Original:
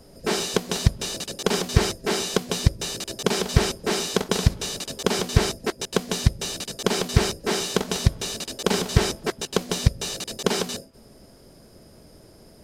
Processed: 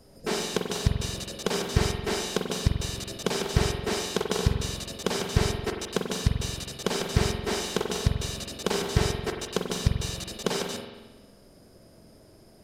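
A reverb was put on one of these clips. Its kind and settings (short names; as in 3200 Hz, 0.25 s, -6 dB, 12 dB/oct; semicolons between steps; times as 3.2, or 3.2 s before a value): spring tank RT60 1.2 s, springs 45 ms, chirp 25 ms, DRR 3 dB; gain -5.5 dB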